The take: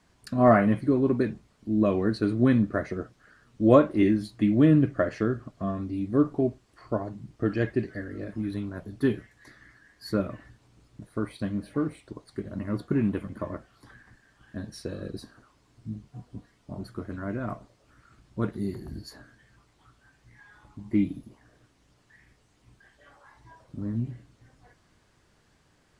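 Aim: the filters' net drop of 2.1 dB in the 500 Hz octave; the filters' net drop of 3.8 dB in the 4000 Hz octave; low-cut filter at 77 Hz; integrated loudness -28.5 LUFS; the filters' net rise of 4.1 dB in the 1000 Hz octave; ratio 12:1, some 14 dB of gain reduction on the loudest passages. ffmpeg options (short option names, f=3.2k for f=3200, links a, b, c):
-af "highpass=77,equalizer=f=500:t=o:g=-5,equalizer=f=1k:t=o:g=7.5,equalizer=f=4k:t=o:g=-5,acompressor=threshold=-26dB:ratio=12,volume=6dB"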